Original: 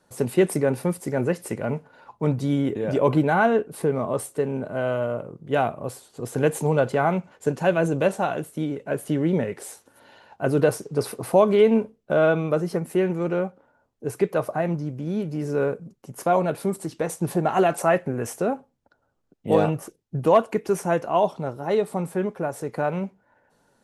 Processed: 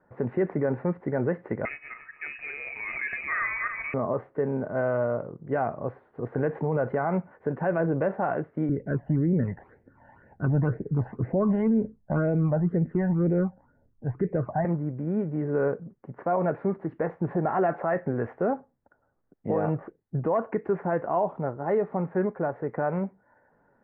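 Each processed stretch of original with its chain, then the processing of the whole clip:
1.65–3.94 regenerating reverse delay 0.145 s, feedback 43%, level -7.5 dB + inverted band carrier 2700 Hz
8.69–14.65 tilt -3 dB/oct + phaser stages 12, 2 Hz, lowest notch 380–1200 Hz
whole clip: limiter -16 dBFS; Chebyshev low-pass 1900 Hz, order 4

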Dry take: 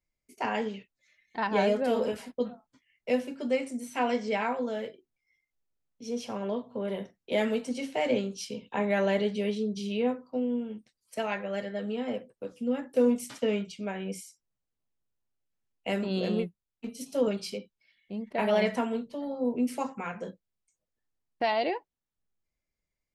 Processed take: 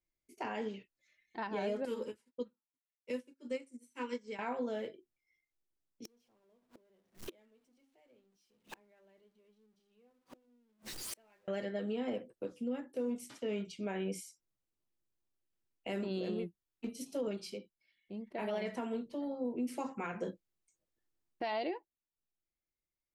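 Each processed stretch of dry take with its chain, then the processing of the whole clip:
1.85–4.39 Butterworth band-stop 700 Hz, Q 2.8 + bell 8600 Hz +8.5 dB 1.1 oct + upward expander 2.5:1, over -47 dBFS
6.05–11.48 zero-crossing step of -33.5 dBFS + notches 50/100/150/200/250/300 Hz + flipped gate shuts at -31 dBFS, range -37 dB
whole clip: bell 340 Hz +9.5 dB 0.31 oct; vocal rider within 5 dB 0.5 s; limiter -21.5 dBFS; gain -6.5 dB

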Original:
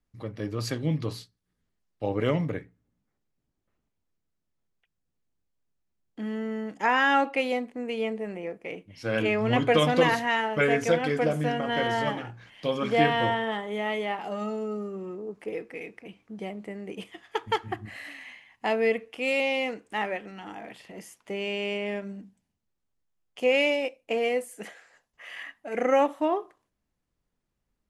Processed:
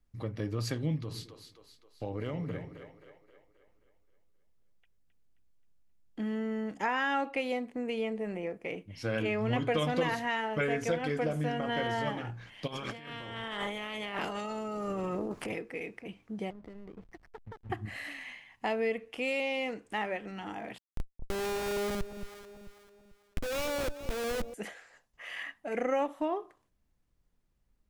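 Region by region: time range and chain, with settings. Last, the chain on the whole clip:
0.99–6.2 compressor 2.5:1, threshold -36 dBFS + split-band echo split 390 Hz, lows 0.108 s, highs 0.265 s, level -9.5 dB
12.66–15.57 spectral limiter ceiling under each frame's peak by 16 dB + negative-ratio compressor -38 dBFS
16.5–17.7 steep low-pass 2300 Hz 96 dB/oct + compressor 8:1, threshold -43 dBFS + backlash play -45 dBFS
20.78–24.54 Schmitt trigger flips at -33 dBFS + echo with dull and thin repeats by turns 0.221 s, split 810 Hz, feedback 58%, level -11 dB
whole clip: low shelf 86 Hz +10 dB; compressor 2:1, threshold -33 dBFS

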